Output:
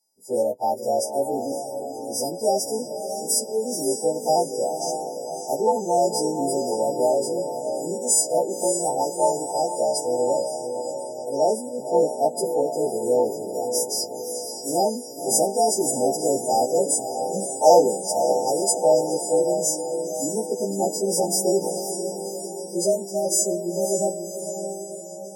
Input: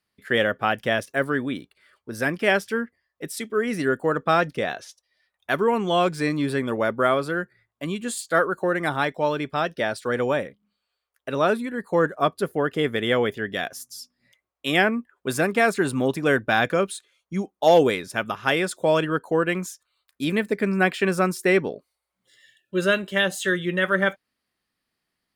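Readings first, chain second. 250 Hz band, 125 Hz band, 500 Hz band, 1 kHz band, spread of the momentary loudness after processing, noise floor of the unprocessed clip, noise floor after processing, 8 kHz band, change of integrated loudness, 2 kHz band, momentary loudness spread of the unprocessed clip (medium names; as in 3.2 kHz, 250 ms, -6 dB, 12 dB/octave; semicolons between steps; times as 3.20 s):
-3.5 dB, -8.0 dB, +2.5 dB, +1.5 dB, 10 LU, -82 dBFS, -35 dBFS, +15.0 dB, +0.5 dB, under -40 dB, 11 LU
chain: partials quantised in pitch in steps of 2 st; frequency weighting A; echo that smears into a reverb 542 ms, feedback 55%, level -7 dB; FFT band-reject 940–4600 Hz; trim +4.5 dB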